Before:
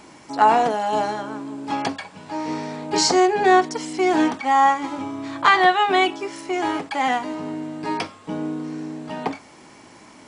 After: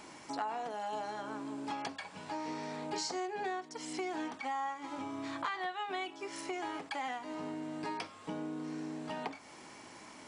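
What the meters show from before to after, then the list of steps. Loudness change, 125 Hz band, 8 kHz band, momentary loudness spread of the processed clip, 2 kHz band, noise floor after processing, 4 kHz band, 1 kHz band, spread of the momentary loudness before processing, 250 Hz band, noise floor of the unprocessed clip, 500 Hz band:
-18.5 dB, -14.0 dB, -16.5 dB, 6 LU, -18.5 dB, -53 dBFS, -17.0 dB, -19.0 dB, 15 LU, -16.0 dB, -47 dBFS, -18.5 dB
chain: low shelf 410 Hz -5.5 dB; compressor 5:1, threshold -33 dBFS, peak gain reduction 19.5 dB; gain -4 dB

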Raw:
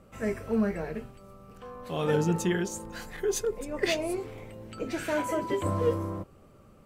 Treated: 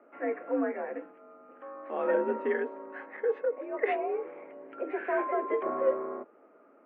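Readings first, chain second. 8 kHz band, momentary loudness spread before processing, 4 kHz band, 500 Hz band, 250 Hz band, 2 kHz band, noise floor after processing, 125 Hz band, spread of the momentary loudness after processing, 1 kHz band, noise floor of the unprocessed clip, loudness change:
under -40 dB, 17 LU, under -20 dB, +0.5 dB, -6.5 dB, -1.5 dB, -60 dBFS, under -25 dB, 16 LU, +1.5 dB, -56 dBFS, -1.5 dB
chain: mistuned SSB +57 Hz 240–2100 Hz

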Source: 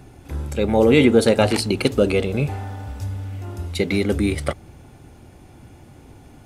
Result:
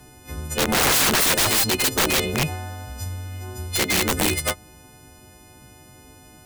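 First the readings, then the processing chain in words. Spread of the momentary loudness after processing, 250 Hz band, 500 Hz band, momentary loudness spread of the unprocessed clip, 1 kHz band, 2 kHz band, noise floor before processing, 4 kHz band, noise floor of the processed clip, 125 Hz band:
18 LU, -8.5 dB, -9.0 dB, 17 LU, +3.0 dB, +4.0 dB, -46 dBFS, +7.0 dB, -49 dBFS, -5.0 dB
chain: frequency quantiser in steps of 3 st; added harmonics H 4 -33 dB, 6 -20 dB, 7 -23 dB, 8 -25 dB, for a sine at -1.5 dBFS; wrapped overs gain 16 dB; gain +3.5 dB

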